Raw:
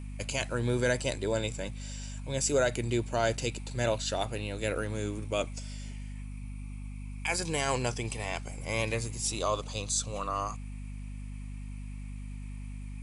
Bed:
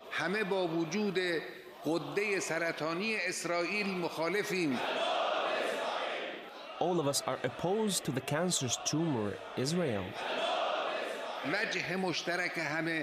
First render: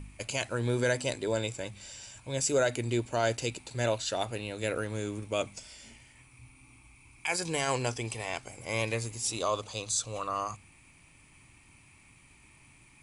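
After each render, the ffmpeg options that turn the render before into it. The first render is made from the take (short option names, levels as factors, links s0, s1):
-af "bandreject=f=50:t=h:w=4,bandreject=f=100:t=h:w=4,bandreject=f=150:t=h:w=4,bandreject=f=200:t=h:w=4,bandreject=f=250:t=h:w=4"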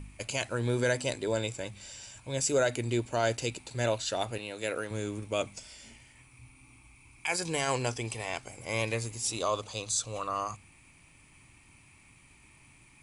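-filter_complex "[0:a]asettb=1/sr,asplit=3[s0][s1][s2];[s0]atrim=end=4.384[s3];[s1]atrim=start=4.38:end=4.91,asetpts=PTS-STARTPTS,afade=t=in:d=0.004:c=qsin,afade=t=out:st=0.526:d=0.004:c=qsin,highpass=f=310:p=1[s4];[s2]atrim=start=4.906[s5];[s3][s4]acrossfade=d=0.004:c1=hsin:c2=qsin[s6];[s6][s5]acrossfade=d=0.004:c1=qsin:c2=hsin"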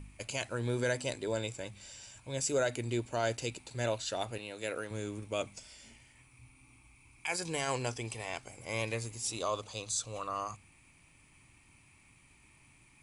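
-af "volume=0.631"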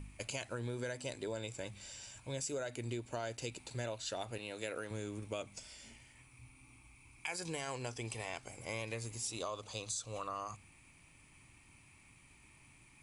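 -af "acompressor=threshold=0.0141:ratio=6"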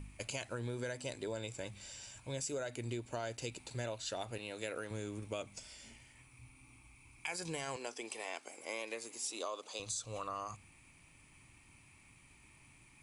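-filter_complex "[0:a]asettb=1/sr,asplit=3[s0][s1][s2];[s0]atrim=end=7.764[s3];[s1]atrim=start=7.76:end=9.8,asetpts=PTS-STARTPTS,afade=t=in:d=0.004:c=qsin,afade=t=out:st=2.036:d=0.004:c=qsin,highpass=f=270:w=0.5412,highpass=f=270:w=1.3066[s4];[s2]atrim=start=9.796[s5];[s3][s4]acrossfade=d=0.004:c1=hsin:c2=qsin[s6];[s6][s5]acrossfade=d=0.004:c1=qsin:c2=hsin"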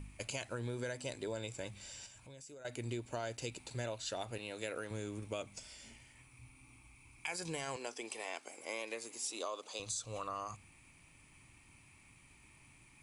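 -filter_complex "[0:a]asettb=1/sr,asplit=3[s0][s1][s2];[s0]atrim=end=2.064[s3];[s1]atrim=start=2.06:end=2.65,asetpts=PTS-STARTPTS,afade=t=in:d=0.004:c=qsin,afade=t=out:st=0.586:d=0.004:c=qsin,acompressor=threshold=0.00178:ratio=3:attack=3.2:release=140:knee=1:detection=peak[s4];[s2]atrim=start=2.646[s5];[s3][s4]acrossfade=d=0.004:c1=hsin:c2=qsin[s6];[s6][s5]acrossfade=d=0.004:c1=qsin:c2=hsin"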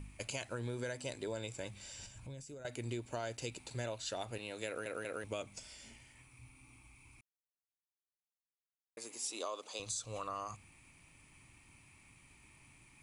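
-filter_complex "[0:a]asettb=1/sr,asplit=3[s0][s1][s2];[s0]atrim=end=1.994[s3];[s1]atrim=start=1.99:end=2.66,asetpts=PTS-STARTPTS,afade=t=in:d=0.004:c=qsin,afade=t=out:st=0.666:d=0.004:c=qsin,lowshelf=f=250:g=12[s4];[s2]atrim=start=2.656[s5];[s3][s4]acrossfade=d=0.004:c1=hsin:c2=qsin[s6];[s6][s5]acrossfade=d=0.004:c1=qsin:c2=hsin,asplit=6[s7][s8][s9][s10][s11][s12];[s7]atrim=end=4.862[s13];[s8]atrim=start=4.668:end=4.862[s14];[s9]atrim=start=4.668:end=4.862[s15];[s10]atrim=start=5.238:end=7.21,asetpts=PTS-STARTPTS,afade=t=out:st=1.968:d=0.004:c=hsin[s16];[s11]atrim=start=7.21:end=8.97,asetpts=PTS-STARTPTS,volume=0[s17];[s12]atrim=start=8.97,asetpts=PTS-STARTPTS,afade=t=in:d=0.004:c=hsin[s18];[s13][s14]acrossfade=d=0.004:c1=hsin:c2=hsin[s19];[s19][s15]acrossfade=d=0.004:c1=hsin:c2=hsin[s20];[s16][s17][s18]concat=n=3:v=0:a=1[s21];[s20][s21]acrossfade=d=0.004:c1=hsin:c2=hsin"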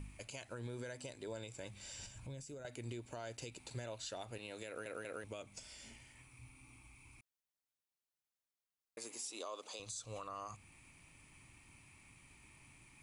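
-af "alimiter=level_in=3.55:limit=0.0631:level=0:latency=1:release=274,volume=0.282"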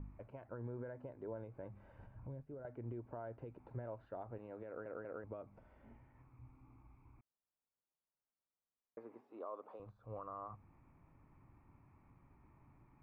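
-af "lowpass=f=1300:w=0.5412,lowpass=f=1300:w=1.3066"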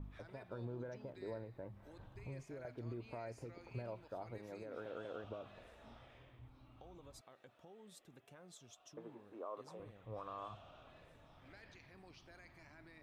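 -filter_complex "[1:a]volume=0.0422[s0];[0:a][s0]amix=inputs=2:normalize=0"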